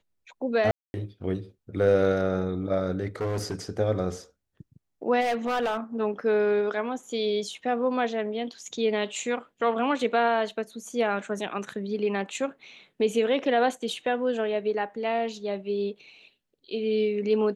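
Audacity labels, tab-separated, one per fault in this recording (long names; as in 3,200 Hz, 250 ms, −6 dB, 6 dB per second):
0.710000	0.940000	drop-out 231 ms
3.210000	3.550000	clipping −25.5 dBFS
5.200000	5.770000	clipping −22.5 dBFS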